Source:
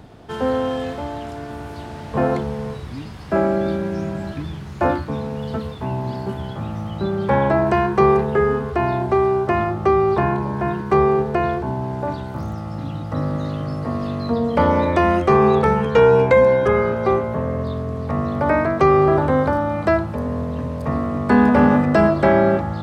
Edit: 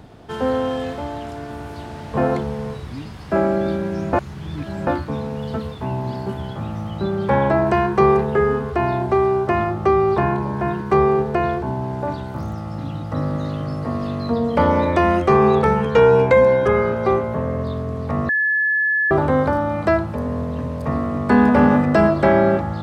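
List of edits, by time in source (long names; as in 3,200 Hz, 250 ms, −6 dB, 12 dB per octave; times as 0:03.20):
0:04.13–0:04.87: reverse
0:18.29–0:19.11: beep over 1,720 Hz −15.5 dBFS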